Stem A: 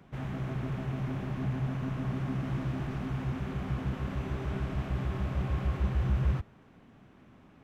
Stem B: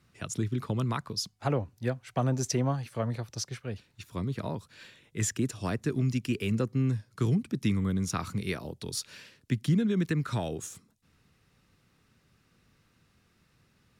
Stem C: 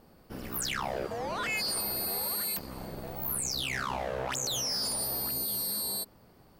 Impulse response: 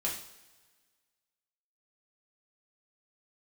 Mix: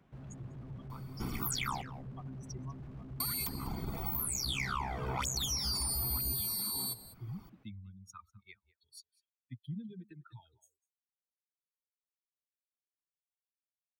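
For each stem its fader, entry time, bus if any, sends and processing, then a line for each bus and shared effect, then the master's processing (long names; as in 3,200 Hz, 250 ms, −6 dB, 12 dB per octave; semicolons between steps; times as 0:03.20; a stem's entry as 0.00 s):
−10.0 dB, 0.00 s, no bus, no send, no echo send, slew-rate limiting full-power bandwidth 3.4 Hz
−17.0 dB, 0.00 s, bus A, no send, echo send −18.5 dB, spectral dynamics exaggerated over time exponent 3
+2.0 dB, 0.90 s, muted 0:01.82–0:03.20, bus A, no send, echo send −19.5 dB, reverb reduction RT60 1.1 s
bus A: 0.0 dB, comb filter 0.9 ms, depth 98%; downward compressor, threshold −33 dBFS, peak gain reduction 9.5 dB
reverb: not used
echo: single-tap delay 198 ms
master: no processing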